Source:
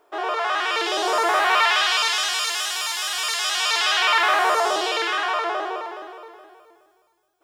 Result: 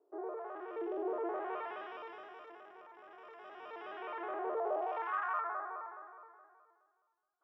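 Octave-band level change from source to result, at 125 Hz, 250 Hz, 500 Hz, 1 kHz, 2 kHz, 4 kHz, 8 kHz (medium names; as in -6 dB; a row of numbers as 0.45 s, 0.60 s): no reading, -9.0 dB, -12.0 dB, -18.0 dB, -25.0 dB, under -40 dB, under -40 dB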